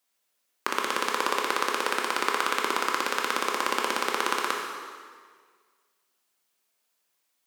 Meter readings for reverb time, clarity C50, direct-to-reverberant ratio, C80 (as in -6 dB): 1.7 s, 2.0 dB, 0.0 dB, 3.5 dB